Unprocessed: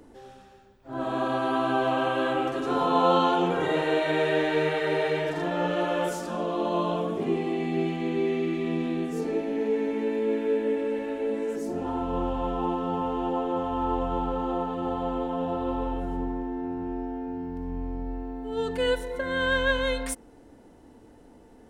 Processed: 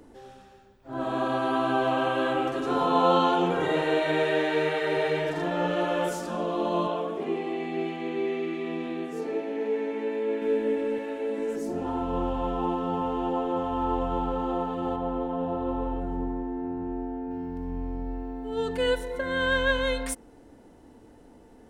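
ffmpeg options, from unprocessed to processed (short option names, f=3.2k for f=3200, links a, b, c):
-filter_complex "[0:a]asettb=1/sr,asplit=3[a][b][c];[a]atrim=end=4.234[d];[b]atrim=start=4.23:end=4.97,asetpts=PTS-STARTPTS,afade=t=in:d=0.004:c=qsin,afade=t=out:st=0.736:d=0.004:c=qsin,highpass=f=180:p=1[e];[c]atrim=start=4.966[f];[d][e]acrossfade=d=0.004:c1=hsin:c2=qsin[g];[g][f]acrossfade=d=0.004:c1=qsin:c2=hsin,asettb=1/sr,asplit=3[h][i][j];[h]atrim=end=6.874[k];[i]atrim=start=6.87:end=10.42,asetpts=PTS-STARTPTS,afade=t=in:d=0.004:c=qsin,afade=t=out:st=3.546:d=0.004:c=qsin,bass=f=250:g=-12,treble=f=4k:g=-6[l];[j]atrim=start=10.416[m];[k][l]acrossfade=d=0.004:c1=hsin:c2=qsin[n];[n][m]acrossfade=d=0.004:c1=qsin:c2=hsin,asettb=1/sr,asplit=3[o][p][q];[o]atrim=end=10.984[r];[p]atrim=start=10.98:end=11.38,asetpts=PTS-STARTPTS,afade=t=in:d=0.004:c=qsin,afade=t=out:st=0.396:d=0.004:c=qsin,lowshelf=f=170:g=-11.5[s];[q]atrim=start=11.376[t];[r][s]acrossfade=d=0.004:c1=hsin:c2=qsin[u];[u][t]acrossfade=d=0.004:c1=qsin:c2=hsin,asettb=1/sr,asplit=3[v][w][x];[v]atrim=end=14.964[y];[w]atrim=start=14.96:end=17.31,asetpts=PTS-STARTPTS,afade=t=in:d=0.004:c=qsin,afade=t=out:st=2.346:d=0.004:c=qsin,highshelf=f=2.5k:g=-11[z];[x]atrim=start=17.306[aa];[y][z]acrossfade=d=0.004:c1=hsin:c2=qsin[ab];[ab][aa]acrossfade=d=0.004:c1=qsin:c2=hsin"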